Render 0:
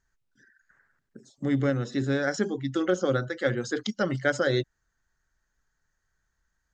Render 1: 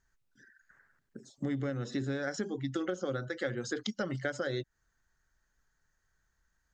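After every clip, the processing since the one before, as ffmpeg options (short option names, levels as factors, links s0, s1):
-af "acompressor=threshold=0.0282:ratio=6"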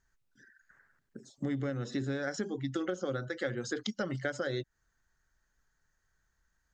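-af anull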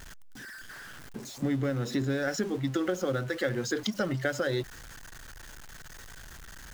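-af "aeval=exprs='val(0)+0.5*0.00631*sgn(val(0))':c=same,volume=1.58"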